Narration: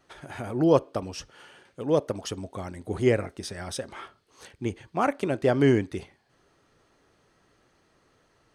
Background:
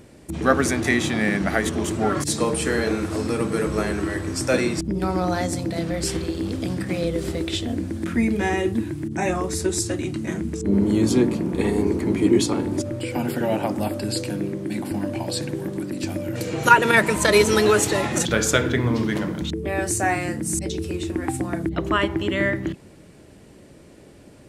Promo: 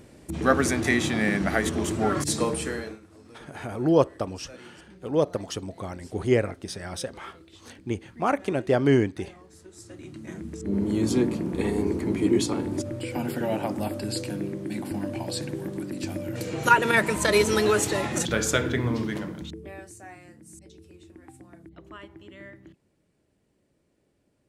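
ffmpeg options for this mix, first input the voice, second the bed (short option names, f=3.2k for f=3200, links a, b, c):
-filter_complex "[0:a]adelay=3250,volume=0.5dB[a];[1:a]volume=19dB,afade=t=out:st=2.39:d=0.61:silence=0.0668344,afade=t=in:st=9.74:d=1.4:silence=0.0841395,afade=t=out:st=18.87:d=1.04:silence=0.11885[b];[a][b]amix=inputs=2:normalize=0"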